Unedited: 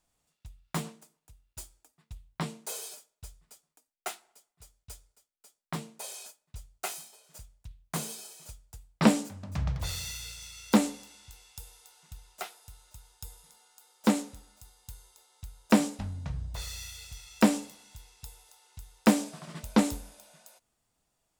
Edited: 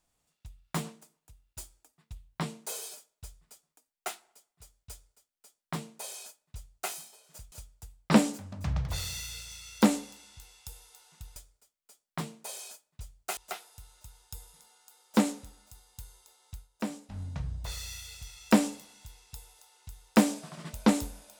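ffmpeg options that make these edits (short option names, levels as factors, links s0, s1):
-filter_complex "[0:a]asplit=6[s0][s1][s2][s3][s4][s5];[s0]atrim=end=7.522[s6];[s1]atrim=start=8.428:end=12.272[s7];[s2]atrim=start=4.908:end=6.922[s8];[s3]atrim=start=12.268:end=15.58,asetpts=PTS-STARTPTS,afade=t=out:st=3.182:d=0.13:silence=0.237137[s9];[s4]atrim=start=15.58:end=15.99,asetpts=PTS-STARTPTS,volume=0.237[s10];[s5]atrim=start=15.99,asetpts=PTS-STARTPTS,afade=t=in:d=0.13:silence=0.237137[s11];[s6][s7]acrossfade=d=0.004:c1=hsin:c2=hsin[s12];[s12][s8]acrossfade=d=0.004:c1=hsin:c2=hsin[s13];[s9][s10][s11]concat=n=3:v=0:a=1[s14];[s13][s14]acrossfade=d=0.004:c1=hsin:c2=hsin"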